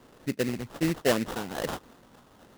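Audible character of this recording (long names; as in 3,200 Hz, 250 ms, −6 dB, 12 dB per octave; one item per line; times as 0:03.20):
phaser sweep stages 8, 1.2 Hz, lowest notch 510–4,300 Hz
aliases and images of a low sample rate 2,300 Hz, jitter 20%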